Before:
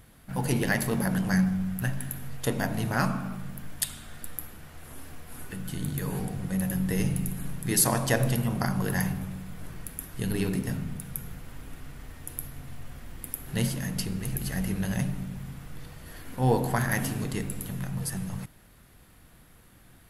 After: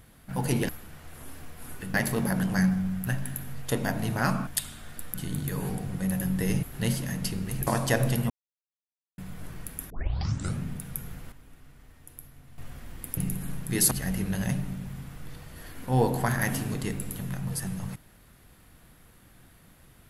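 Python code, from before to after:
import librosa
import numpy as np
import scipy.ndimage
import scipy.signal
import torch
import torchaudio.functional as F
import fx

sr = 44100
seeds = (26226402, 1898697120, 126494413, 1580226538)

y = fx.edit(x, sr, fx.cut(start_s=3.22, length_s=0.5),
    fx.move(start_s=4.39, length_s=1.25, to_s=0.69),
    fx.swap(start_s=7.13, length_s=0.74, other_s=13.37, other_length_s=1.04),
    fx.silence(start_s=8.5, length_s=0.88),
    fx.tape_start(start_s=10.1, length_s=0.74),
    fx.clip_gain(start_s=11.52, length_s=1.26, db=-10.0), tone=tone)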